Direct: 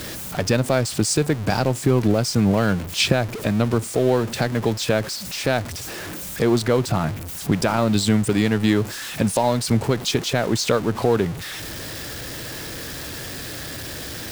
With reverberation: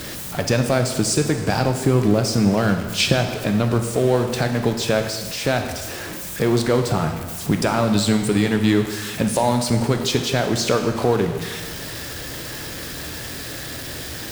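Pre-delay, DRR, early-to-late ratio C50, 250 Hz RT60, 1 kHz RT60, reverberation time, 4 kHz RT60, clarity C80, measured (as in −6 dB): 6 ms, 5.0 dB, 7.0 dB, 1.4 s, 1.4 s, 1.4 s, 1.3 s, 9.0 dB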